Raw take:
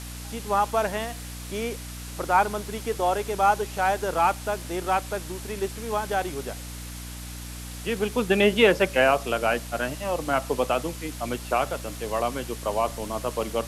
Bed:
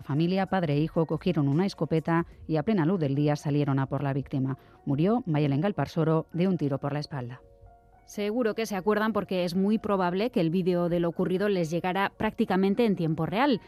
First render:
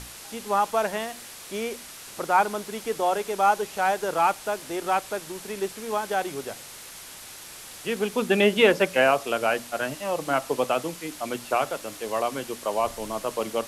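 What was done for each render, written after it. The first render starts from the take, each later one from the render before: hum notches 60/120/180/240/300 Hz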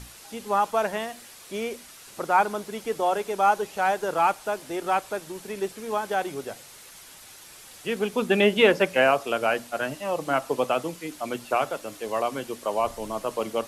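noise reduction 6 dB, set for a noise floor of -43 dBFS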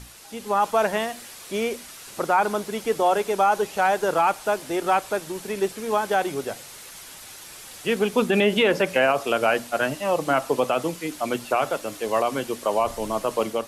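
peak limiter -15.5 dBFS, peak gain reduction 8.5 dB; level rider gain up to 5 dB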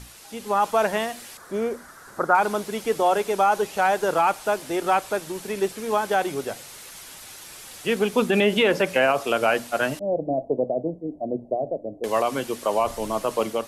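1.37–2.35 s: resonant high shelf 2 kHz -9 dB, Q 3; 9.99–12.04 s: elliptic low-pass 670 Hz, stop band 50 dB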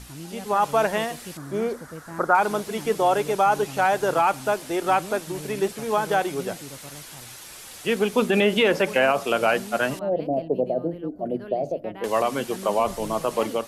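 add bed -13.5 dB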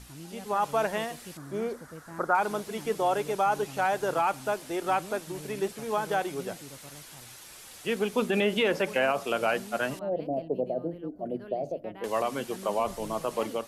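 trim -6 dB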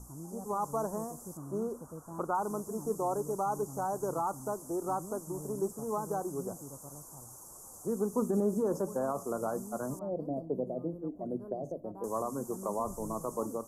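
elliptic band-stop 1.1–6.5 kHz, stop band 50 dB; dynamic bell 690 Hz, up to -7 dB, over -40 dBFS, Q 1.1

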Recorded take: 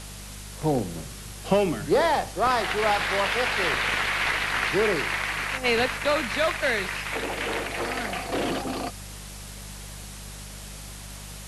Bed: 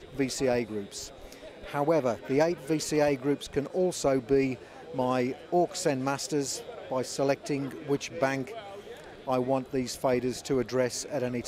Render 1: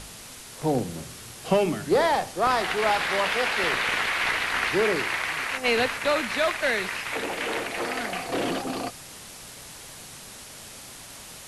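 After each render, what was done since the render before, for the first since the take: de-hum 50 Hz, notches 4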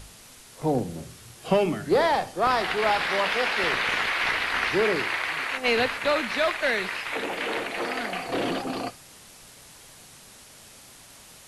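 noise print and reduce 6 dB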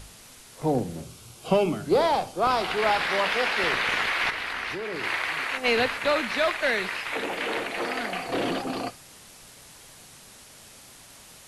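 1.02–2.73 s: peaking EQ 1.8 kHz -13 dB 0.24 oct; 4.30–5.04 s: level held to a coarse grid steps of 16 dB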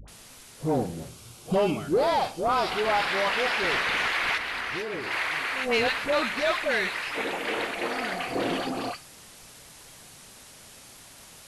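phase dispersion highs, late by 80 ms, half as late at 780 Hz; saturation -15 dBFS, distortion -21 dB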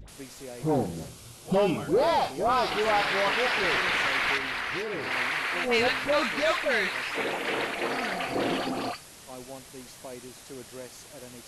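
add bed -15.5 dB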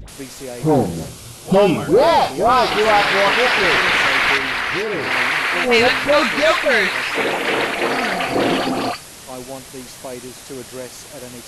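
trim +10.5 dB

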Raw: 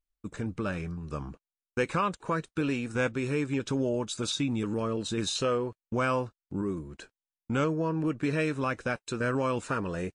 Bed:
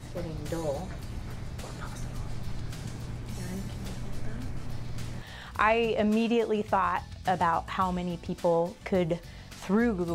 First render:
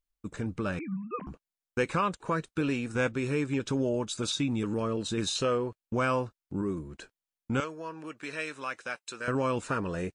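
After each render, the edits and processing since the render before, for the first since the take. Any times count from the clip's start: 0.79–1.27 s: formants replaced by sine waves; 7.60–9.28 s: high-pass 1.4 kHz 6 dB/octave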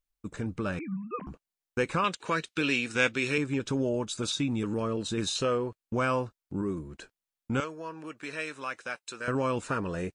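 2.04–3.38 s: frequency weighting D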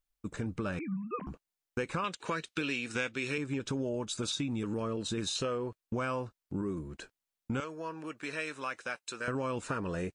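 compression 4:1, threshold -31 dBFS, peak gain reduction 10.5 dB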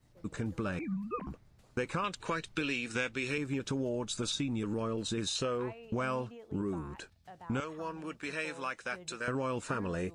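add bed -24.5 dB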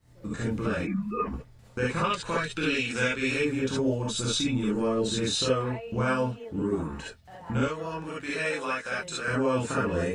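gated-style reverb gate 90 ms rising, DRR -6.5 dB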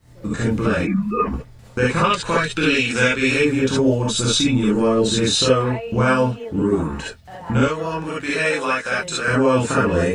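trim +9.5 dB

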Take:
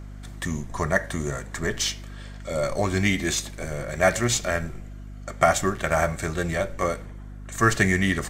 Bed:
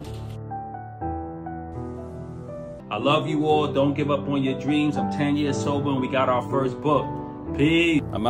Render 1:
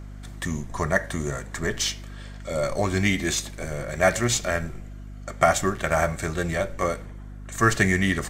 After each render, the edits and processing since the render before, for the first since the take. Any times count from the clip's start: no audible change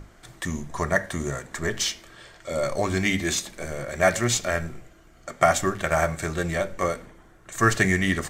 hum notches 50/100/150/200/250 Hz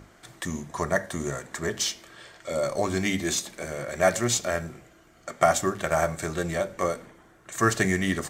dynamic bell 2.1 kHz, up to -5 dB, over -37 dBFS, Q 0.96; high-pass 140 Hz 6 dB/octave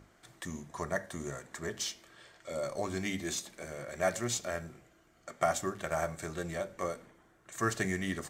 trim -9 dB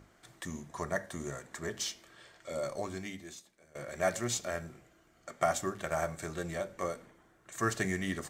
2.68–3.75 s: fade out quadratic, to -20 dB

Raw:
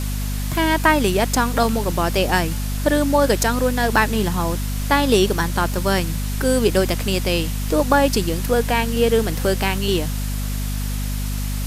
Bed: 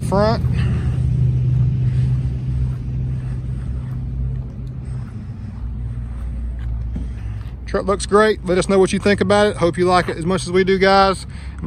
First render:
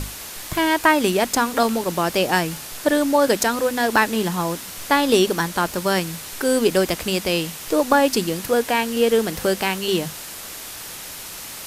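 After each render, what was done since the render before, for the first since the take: hum notches 50/100/150/200/250 Hz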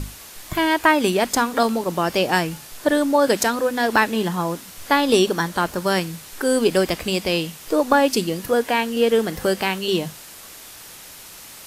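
noise print and reduce 6 dB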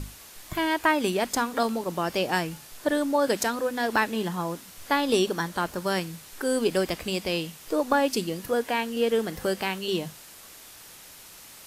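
trim -6.5 dB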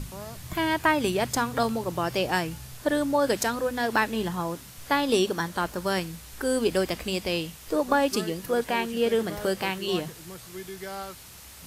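add bed -24.5 dB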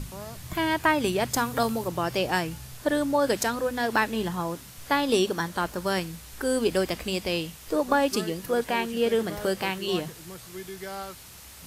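1.34–1.88 s: treble shelf 11 kHz +9.5 dB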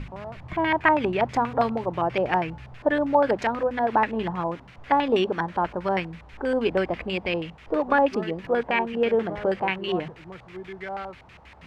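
LFO low-pass square 6.2 Hz 840–2300 Hz

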